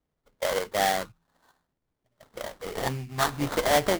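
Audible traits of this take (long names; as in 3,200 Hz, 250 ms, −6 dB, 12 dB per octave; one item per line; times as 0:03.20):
phaser sweep stages 4, 0.55 Hz, lowest notch 500–3,100 Hz
aliases and images of a low sample rate 2,600 Hz, jitter 20%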